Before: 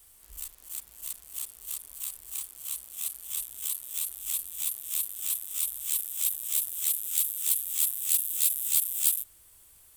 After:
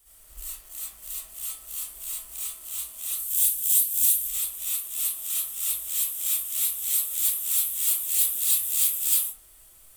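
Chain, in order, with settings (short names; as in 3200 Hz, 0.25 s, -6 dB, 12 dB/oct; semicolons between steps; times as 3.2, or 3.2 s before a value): 3.11–4.22 EQ curve 140 Hz 0 dB, 640 Hz -17 dB, 2500 Hz 0 dB, 15000 Hz +11 dB; digital reverb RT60 0.56 s, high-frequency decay 0.45×, pre-delay 30 ms, DRR -10 dB; gain -5.5 dB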